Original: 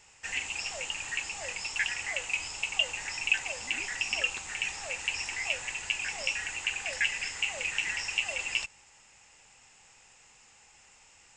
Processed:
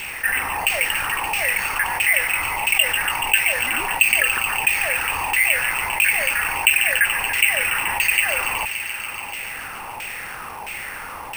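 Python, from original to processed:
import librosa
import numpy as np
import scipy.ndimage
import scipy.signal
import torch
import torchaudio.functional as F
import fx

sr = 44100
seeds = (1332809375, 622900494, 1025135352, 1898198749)

p1 = fx.freq_compress(x, sr, knee_hz=3400.0, ratio=1.5)
p2 = fx.high_shelf(p1, sr, hz=4400.0, db=7.0)
p3 = fx.quant_dither(p2, sr, seeds[0], bits=8, dither='triangular')
p4 = p2 + (p3 * 10.0 ** (-8.0 / 20.0))
p5 = fx.filter_lfo_lowpass(p4, sr, shape='saw_down', hz=1.5, low_hz=860.0, high_hz=2700.0, q=3.9)
p6 = p5 + fx.echo_wet_highpass(p5, sr, ms=143, feedback_pct=73, hz=2800.0, wet_db=-8.5, dry=0)
p7 = np.repeat(p6[::4], 4)[:len(p6)]
y = fx.env_flatten(p7, sr, amount_pct=50)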